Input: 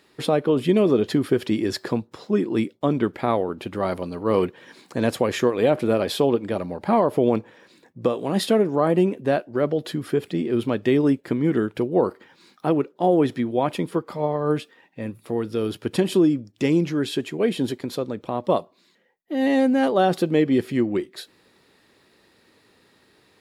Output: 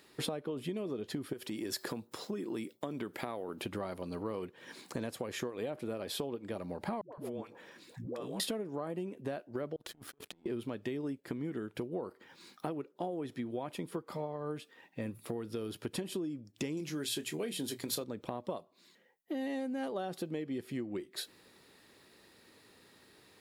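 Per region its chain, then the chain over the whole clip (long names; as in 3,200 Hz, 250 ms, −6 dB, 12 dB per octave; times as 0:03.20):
0:01.33–0:03.62: high-shelf EQ 9,100 Hz +11 dB + downward compressor 2 to 1, threshold −26 dBFS + high-pass filter 180 Hz 6 dB per octave
0:07.01–0:08.40: downward compressor 3 to 1, threshold −35 dBFS + all-pass dispersion highs, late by 117 ms, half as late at 430 Hz
0:09.76–0:10.46: compressor whose output falls as the input rises −35 dBFS + power curve on the samples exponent 2
0:16.77–0:18.04: high-shelf EQ 3,000 Hz +11.5 dB + mains-hum notches 60/120/180 Hz + double-tracking delay 26 ms −11.5 dB
whole clip: downward compressor 12 to 1, threshold −31 dBFS; high-shelf EQ 7,000 Hz +7.5 dB; level −3.5 dB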